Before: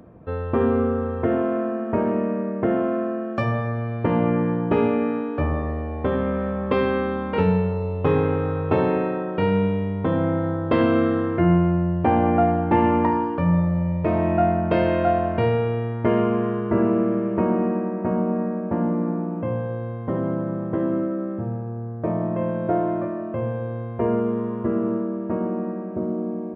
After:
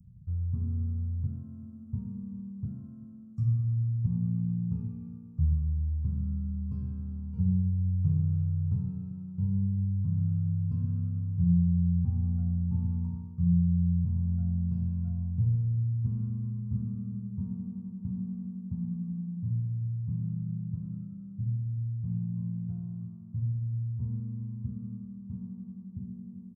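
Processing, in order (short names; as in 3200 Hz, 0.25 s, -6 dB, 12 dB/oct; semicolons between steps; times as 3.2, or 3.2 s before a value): inverse Chebyshev band-stop 300–3800 Hz, stop band 40 dB; high shelf 2400 Hz -11.5 dB; on a send: feedback echo 0.39 s, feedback 46%, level -18.5 dB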